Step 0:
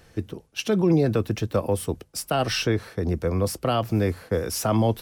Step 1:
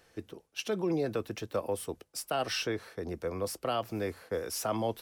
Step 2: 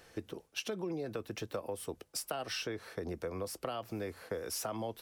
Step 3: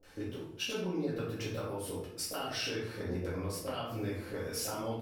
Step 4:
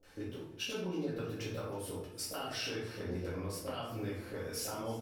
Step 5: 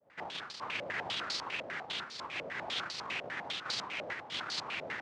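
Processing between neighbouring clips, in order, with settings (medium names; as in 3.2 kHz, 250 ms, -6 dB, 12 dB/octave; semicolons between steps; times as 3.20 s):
tone controls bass -11 dB, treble 0 dB; trim -7 dB
compression 6:1, threshold -40 dBFS, peak gain reduction 13.5 dB; trim +4.5 dB
bands offset in time lows, highs 30 ms, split 560 Hz; simulated room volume 130 m³, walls mixed, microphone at 2.1 m; trim -5 dB
feedback delay 319 ms, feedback 43%, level -18.5 dB; trim -2.5 dB
hard clipper -35.5 dBFS, distortion -14 dB; noise-vocoded speech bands 1; step-sequenced low-pass 10 Hz 600–4500 Hz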